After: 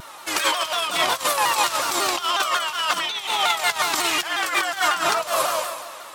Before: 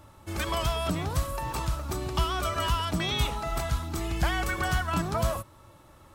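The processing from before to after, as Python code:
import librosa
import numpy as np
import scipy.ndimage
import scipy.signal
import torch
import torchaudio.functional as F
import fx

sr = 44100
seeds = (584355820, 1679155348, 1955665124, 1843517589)

p1 = fx.high_shelf(x, sr, hz=2400.0, db=12.0)
p2 = 10.0 ** (-19.5 / 20.0) * np.tanh(p1 / 10.0 ** (-19.5 / 20.0))
p3 = p1 + (p2 * 10.0 ** (-7.0 / 20.0))
p4 = fx.doubler(p3, sr, ms=43.0, db=-10.0)
p5 = p4 + fx.echo_feedback(p4, sr, ms=139, feedback_pct=57, wet_db=-13, dry=0)
p6 = fx.rev_gated(p5, sr, seeds[0], gate_ms=390, shape='flat', drr_db=7.5)
p7 = fx.over_compress(p6, sr, threshold_db=-25.0, ratio=-0.5)
p8 = scipy.signal.sosfilt(scipy.signal.butter(2, 670.0, 'highpass', fs=sr, output='sos'), p7)
p9 = fx.high_shelf(p8, sr, hz=5900.0, db=-10.5)
p10 = fx.vibrato_shape(p9, sr, shape='saw_down', rate_hz=5.5, depth_cents=160.0)
y = p10 * 10.0 ** (8.0 / 20.0)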